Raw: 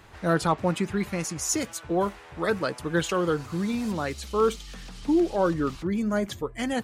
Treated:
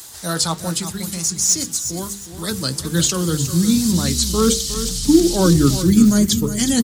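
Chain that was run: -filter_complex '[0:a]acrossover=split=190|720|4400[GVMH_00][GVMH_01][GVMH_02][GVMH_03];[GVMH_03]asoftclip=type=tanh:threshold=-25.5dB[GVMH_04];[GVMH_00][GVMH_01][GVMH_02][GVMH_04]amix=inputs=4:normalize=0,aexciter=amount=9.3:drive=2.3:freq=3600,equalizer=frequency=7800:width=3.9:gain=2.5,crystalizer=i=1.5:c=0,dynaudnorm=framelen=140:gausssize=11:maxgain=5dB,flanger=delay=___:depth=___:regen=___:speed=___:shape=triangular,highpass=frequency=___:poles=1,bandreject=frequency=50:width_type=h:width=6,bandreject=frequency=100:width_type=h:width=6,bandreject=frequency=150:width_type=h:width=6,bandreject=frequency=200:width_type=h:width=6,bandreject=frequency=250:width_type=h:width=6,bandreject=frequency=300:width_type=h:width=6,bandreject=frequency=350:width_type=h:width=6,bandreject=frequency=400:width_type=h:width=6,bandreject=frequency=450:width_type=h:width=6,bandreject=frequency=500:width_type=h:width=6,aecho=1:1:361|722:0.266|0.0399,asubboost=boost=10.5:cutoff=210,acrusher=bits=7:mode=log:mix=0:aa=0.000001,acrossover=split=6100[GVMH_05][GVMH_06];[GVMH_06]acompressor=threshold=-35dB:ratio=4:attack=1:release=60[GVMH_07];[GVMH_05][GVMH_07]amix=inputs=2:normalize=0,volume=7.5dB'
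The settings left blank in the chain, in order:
2.5, 5.4, 79, 1.3, 88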